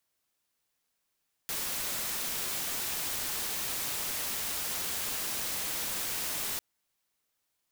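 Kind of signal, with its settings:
noise white, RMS −34 dBFS 5.10 s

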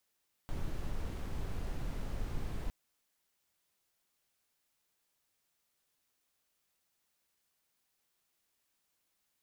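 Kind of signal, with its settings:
noise brown, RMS −36 dBFS 2.21 s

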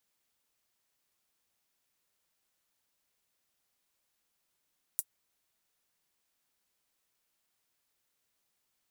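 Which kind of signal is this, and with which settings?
closed synth hi-hat, high-pass 8,800 Hz, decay 0.06 s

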